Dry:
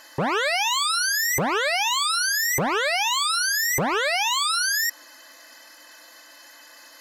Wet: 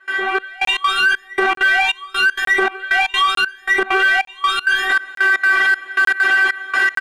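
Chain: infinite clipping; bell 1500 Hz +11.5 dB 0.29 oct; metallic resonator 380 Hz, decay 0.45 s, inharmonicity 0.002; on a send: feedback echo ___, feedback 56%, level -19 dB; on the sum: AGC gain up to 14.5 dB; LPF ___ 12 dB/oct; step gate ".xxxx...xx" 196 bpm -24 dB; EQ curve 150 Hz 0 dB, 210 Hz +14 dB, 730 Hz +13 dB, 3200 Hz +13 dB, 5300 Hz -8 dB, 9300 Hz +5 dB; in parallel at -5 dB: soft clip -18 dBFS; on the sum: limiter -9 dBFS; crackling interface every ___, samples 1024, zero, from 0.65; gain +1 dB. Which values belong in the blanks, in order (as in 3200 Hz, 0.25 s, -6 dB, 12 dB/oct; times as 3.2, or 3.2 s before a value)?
83 ms, 4200 Hz, 0.90 s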